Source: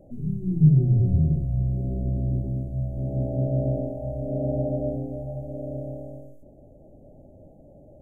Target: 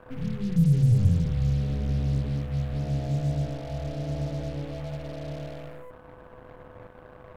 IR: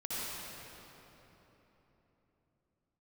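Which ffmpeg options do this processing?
-filter_complex "[0:a]equalizer=f=100:t=o:w=0.33:g=4,equalizer=f=160:t=o:w=0.33:g=-4,equalizer=f=315:t=o:w=0.33:g=-10,equalizer=f=630:t=o:w=0.33:g=-4,acrossover=split=190[a][b];[b]alimiter=level_in=8dB:limit=-24dB:level=0:latency=1:release=93,volume=-8dB[c];[a][c]amix=inputs=2:normalize=0,aeval=exprs='val(0)+0.00562*sin(2*PI*460*n/s)':c=same,acrusher=bits=6:mix=0:aa=0.5,asetrate=48000,aresample=44100"

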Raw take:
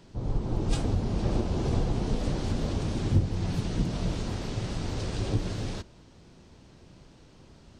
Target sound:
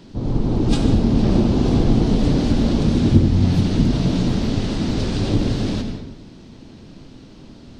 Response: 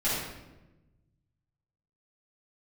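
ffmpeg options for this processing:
-filter_complex "[0:a]equalizer=f=250:t=o:w=1:g=9,equalizer=f=4k:t=o:w=1:g=5,equalizer=f=8k:t=o:w=1:g=-3,asplit=2[a][b];[1:a]atrim=start_sample=2205,afade=t=out:st=0.41:d=0.01,atrim=end_sample=18522,adelay=77[c];[b][c]afir=irnorm=-1:irlink=0,volume=-15.5dB[d];[a][d]amix=inputs=2:normalize=0,volume=6dB"

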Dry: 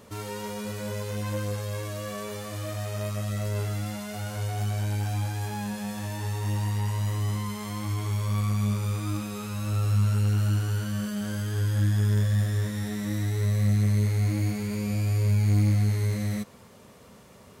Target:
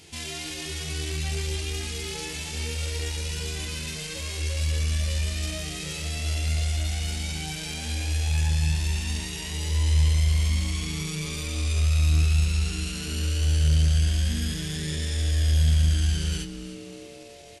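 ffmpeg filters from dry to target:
-filter_complex "[0:a]highshelf=f=2.4k:t=q:w=1.5:g=12,flanger=delay=15.5:depth=6:speed=0.27,asetrate=33038,aresample=44100,atempo=1.33484,acontrast=29,equalizer=f=84:w=3.8:g=5,asplit=7[a][b][c][d][e][f][g];[b]adelay=301,afreqshift=-130,volume=-15.5dB[h];[c]adelay=602,afreqshift=-260,volume=-19.8dB[i];[d]adelay=903,afreqshift=-390,volume=-24.1dB[j];[e]adelay=1204,afreqshift=-520,volume=-28.4dB[k];[f]adelay=1505,afreqshift=-650,volume=-32.7dB[l];[g]adelay=1806,afreqshift=-780,volume=-37dB[m];[a][h][i][j][k][l][m]amix=inputs=7:normalize=0,volume=-5.5dB"

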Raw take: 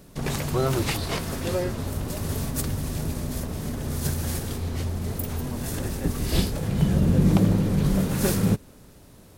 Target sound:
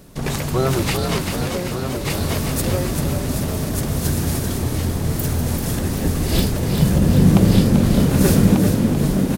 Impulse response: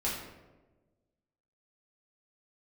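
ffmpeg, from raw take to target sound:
-filter_complex "[0:a]asplit=2[a][b];[b]aecho=0:1:1191:0.668[c];[a][c]amix=inputs=2:normalize=0,asettb=1/sr,asplit=3[d][e][f];[d]atrim=end=1.434[g];[e]atrim=start=1.43:end=2.05,asetpts=PTS-STARTPTS,afade=t=in:d=0.004:c=qsin,afade=t=out:st=0.616:d=0.004:c=qsin,acompressor=threshold=-27dB:ratio=6[h];[f]atrim=start=2.046[i];[g][h]acrossfade=d=0.004:c1=hsin:c2=qsin[j];[j][i]acrossfade=d=0.004:c1=qsin:c2=hsin,asplit=2[k][l];[l]asplit=8[m][n][o][p][q][r][s][t];[m]adelay=389,afreqshift=39,volume=-6.5dB[u];[n]adelay=778,afreqshift=78,volume=-11.1dB[v];[o]adelay=1167,afreqshift=117,volume=-15.7dB[w];[p]adelay=1556,afreqshift=156,volume=-20.2dB[x];[q]adelay=1945,afreqshift=195,volume=-24.8dB[y];[r]adelay=2334,afreqshift=234,volume=-29.4dB[z];[s]adelay=2723,afreqshift=273,volume=-34dB[aa];[t]adelay=3112,afreqshift=312,volume=-38.6dB[ab];[u][v][w][x][y][z][aa][ab]amix=inputs=8:normalize=0[ac];[k][ac]amix=inputs=2:normalize=0,volume=4.5dB"

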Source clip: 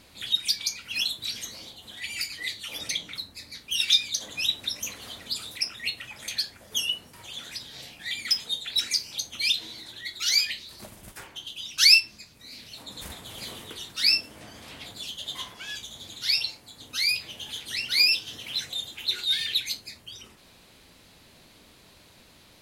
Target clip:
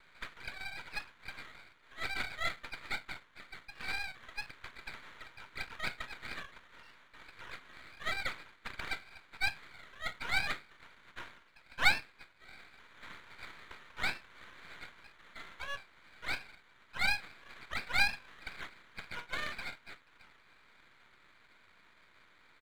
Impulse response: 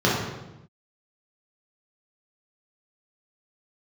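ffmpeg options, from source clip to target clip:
-filter_complex "[0:a]asuperpass=centerf=1800:order=20:qfactor=1.6,asplit=2[a][b];[b]asetrate=29433,aresample=44100,atempo=1.49831,volume=-3dB[c];[a][c]amix=inputs=2:normalize=0,aeval=exprs='max(val(0),0)':c=same,volume=3.5dB"

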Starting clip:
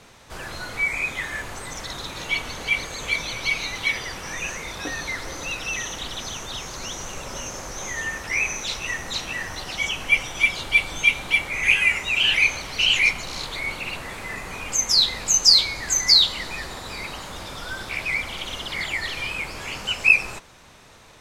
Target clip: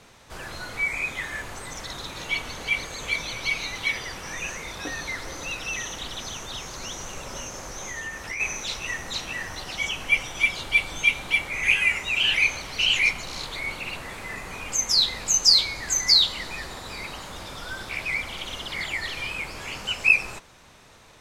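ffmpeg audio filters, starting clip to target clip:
-filter_complex "[0:a]asplit=3[a][b][c];[a]afade=t=out:st=7.44:d=0.02[d];[b]acompressor=threshold=-28dB:ratio=6,afade=t=in:st=7.44:d=0.02,afade=t=out:st=8.39:d=0.02[e];[c]afade=t=in:st=8.39:d=0.02[f];[d][e][f]amix=inputs=3:normalize=0,volume=-2.5dB"

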